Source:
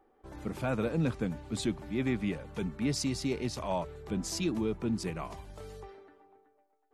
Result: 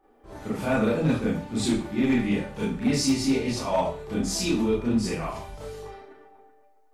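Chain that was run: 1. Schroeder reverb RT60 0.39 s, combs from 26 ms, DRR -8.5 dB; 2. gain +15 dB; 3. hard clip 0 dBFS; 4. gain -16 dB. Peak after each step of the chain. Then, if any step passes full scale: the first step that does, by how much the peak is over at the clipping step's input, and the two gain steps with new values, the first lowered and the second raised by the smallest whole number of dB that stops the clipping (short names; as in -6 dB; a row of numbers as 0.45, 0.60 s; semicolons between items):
-9.5, +5.5, 0.0, -16.0 dBFS; step 2, 5.5 dB; step 2 +9 dB, step 4 -10 dB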